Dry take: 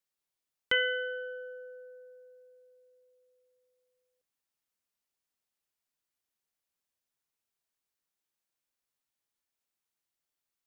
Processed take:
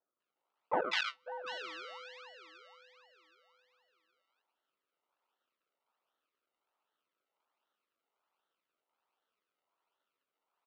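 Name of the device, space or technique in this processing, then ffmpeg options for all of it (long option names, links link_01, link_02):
circuit-bent sampling toy: -filter_complex "[0:a]acrossover=split=2900[link_01][link_02];[link_02]acompressor=threshold=-44dB:ratio=4:attack=1:release=60[link_03];[link_01][link_03]amix=inputs=2:normalize=0,acrusher=samples=36:mix=1:aa=0.000001:lfo=1:lforange=36:lforate=1.3,highpass=510,equalizer=frequency=930:width_type=q:width=4:gain=7,equalizer=frequency=1300:width_type=q:width=4:gain=10,equalizer=frequency=2700:width_type=q:width=4:gain=4,lowpass=frequency=4300:width=0.5412,lowpass=frequency=4300:width=1.3066,asplit=3[link_04][link_05][link_06];[link_04]afade=type=out:start_time=0.79:duration=0.02[link_07];[link_05]agate=range=-37dB:threshold=-29dB:ratio=16:detection=peak,afade=type=in:start_time=0.79:duration=0.02,afade=type=out:start_time=1.26:duration=0.02[link_08];[link_06]afade=type=in:start_time=1.26:duration=0.02[link_09];[link_07][link_08][link_09]amix=inputs=3:normalize=0,highshelf=frequency=2200:gain=9,acrossover=split=1300[link_10][link_11];[link_11]adelay=200[link_12];[link_10][link_12]amix=inputs=2:normalize=0"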